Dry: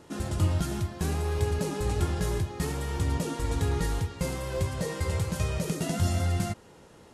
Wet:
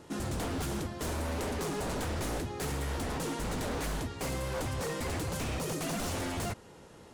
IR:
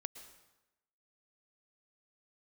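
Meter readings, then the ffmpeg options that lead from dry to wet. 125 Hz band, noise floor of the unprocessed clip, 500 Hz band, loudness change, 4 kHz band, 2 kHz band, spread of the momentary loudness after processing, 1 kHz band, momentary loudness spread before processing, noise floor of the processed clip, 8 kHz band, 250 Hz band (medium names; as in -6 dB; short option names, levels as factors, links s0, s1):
-9.0 dB, -53 dBFS, -3.0 dB, -5.0 dB, -0.5 dB, -0.5 dB, 2 LU, -0.5 dB, 4 LU, -53 dBFS, -1.0 dB, -3.5 dB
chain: -af "aeval=exprs='0.0355*(abs(mod(val(0)/0.0355+3,4)-2)-1)':c=same"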